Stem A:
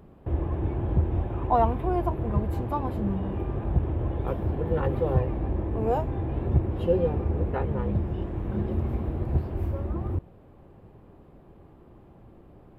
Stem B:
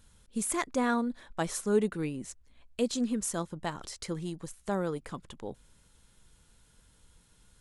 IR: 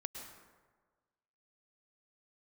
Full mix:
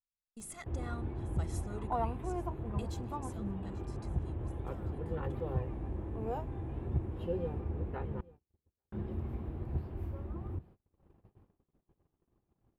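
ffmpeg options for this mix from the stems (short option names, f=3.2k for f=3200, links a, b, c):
-filter_complex "[0:a]acompressor=mode=upward:threshold=-39dB:ratio=2.5,adelay=400,volume=-10.5dB,asplit=3[a][b][c];[a]atrim=end=8.21,asetpts=PTS-STARTPTS,afade=t=out:st=8.206:d=0.004:c=hsin[d];[b]atrim=start=8.21:end=8.92,asetpts=PTS-STARTPTS,volume=0[e];[c]atrim=start=8.92,asetpts=PTS-STARTPTS,afade=t=in:d=0.004:c=hsin[f];[d][e][f]concat=n=3:v=0:a=1,asplit=2[g][h];[h]volume=-22dB[i];[1:a]asoftclip=type=tanh:threshold=-18dB,aecho=1:1:1.5:0.83,volume=-16dB,afade=t=out:st=2.8:d=0.34:silence=0.446684,asplit=2[j][k];[k]volume=-18.5dB[l];[i][l]amix=inputs=2:normalize=0,aecho=0:1:840:1[m];[g][j][m]amix=inputs=3:normalize=0,agate=range=-34dB:threshold=-53dB:ratio=16:detection=peak,equalizer=f=580:w=2.6:g=-4"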